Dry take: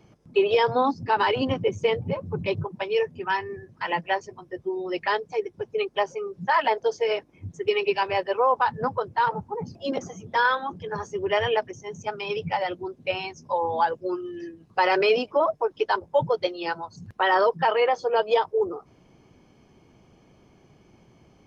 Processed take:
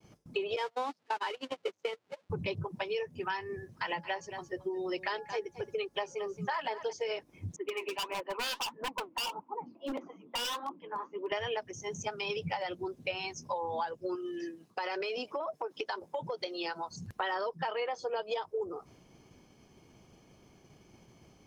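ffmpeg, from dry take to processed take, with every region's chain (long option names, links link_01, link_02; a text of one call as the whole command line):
ffmpeg -i in.wav -filter_complex "[0:a]asettb=1/sr,asplit=3[link_01][link_02][link_03];[link_01]atrim=end=0.564[link_04];[link_02]atrim=start=0.56:end=2.3,asetpts=PTS-STARTPTS,afade=type=in:duration=0.004:curve=qsin,afade=type=out:start_time=1.736:duration=0.004:curve=qsin,aeval=exprs='val(0)+0.5*0.0562*sgn(val(0))':channel_layout=same,agate=range=-36dB:threshold=-20dB:ratio=16:release=100:detection=peak,highpass=380,lowpass=4200[link_05];[link_03]atrim=start=2.296[link_06];[link_04][link_05]acrossfade=duration=0.004:curve1=hsin:curve2=qsin[link_07];[link_07][link_06]acrossfade=duration=0.004:curve1=qsin:curve2=hsin,asettb=1/sr,asplit=3[link_08][link_09][link_10];[link_08]atrim=end=3.684[link_11];[link_09]atrim=start=3.68:end=6.93,asetpts=PTS-STARTPTS,afade=type=in:duration=0.004:curve=qsin,afade=type=out:start_time=3.246:duration=0.004:curve=qsin,bandreject=frequency=281.6:width_type=h:width=4,bandreject=frequency=563.2:width_type=h:width=4,bandreject=frequency=844.8:width_type=h:width=4,bandreject=frequency=1126.4:width_type=h:width=4,bandreject=frequency=1408:width_type=h:width=4,bandreject=frequency=1689.6:width_type=h:width=4,aecho=1:1:223:0.158,atrim=end_sample=143325[link_12];[link_10]atrim=start=6.926[link_13];[link_11][link_12]acrossfade=duration=0.004:curve1=hsin:curve2=qsin[link_14];[link_14][link_13]acrossfade=duration=0.004:curve1=qsin:curve2=hsin,asettb=1/sr,asplit=3[link_15][link_16][link_17];[link_15]atrim=end=7.564[link_18];[link_16]atrim=start=7.56:end=11.32,asetpts=PTS-STARTPTS,afade=type=in:duration=0.004:curve=qsin,afade=type=out:start_time=3.756:duration=0.004:curve=qsin,highpass=frequency=260:width=0.5412,highpass=frequency=260:width=1.3066,equalizer=frequency=290:width_type=q:width=4:gain=7,equalizer=frequency=430:width_type=q:width=4:gain=-7,equalizer=frequency=730:width_type=q:width=4:gain=-7,equalizer=frequency=1000:width_type=q:width=4:gain=8,equalizer=frequency=1700:width_type=q:width=4:gain=-10,lowpass=frequency=2500:width=0.5412,lowpass=frequency=2500:width=1.3066,aeval=exprs='0.0891*(abs(mod(val(0)/0.0891+3,4)-2)-1)':channel_layout=same,flanger=delay=1:depth=8.7:regen=62:speed=1.6:shape=triangular[link_19];[link_17]atrim=start=11.316[link_20];[link_18][link_19]acrossfade=duration=0.004:curve1=hsin:curve2=qsin[link_21];[link_21][link_20]acrossfade=duration=0.004:curve1=qsin:curve2=hsin,asettb=1/sr,asplit=3[link_22][link_23][link_24];[link_22]atrim=end=14.154[link_25];[link_23]atrim=start=14.15:end=16.91,asetpts=PTS-STARTPTS,afade=type=in:duration=0.004:curve=qsin,afade=type=out:start_time=2.756:duration=0.004:curve=qsin,highpass=210,acompressor=threshold=-29dB:ratio=4:attack=3.2:release=140:knee=1:detection=peak[link_26];[link_24]atrim=start=16.906[link_27];[link_25][link_26]acrossfade=duration=0.004:curve1=hsin:curve2=qsin[link_28];[link_28][link_27]acrossfade=duration=0.004:curve1=qsin:curve2=hsin,agate=range=-33dB:threshold=-53dB:ratio=3:detection=peak,highshelf=frequency=4900:gain=11.5,acompressor=threshold=-30dB:ratio=6,volume=-2dB" out.wav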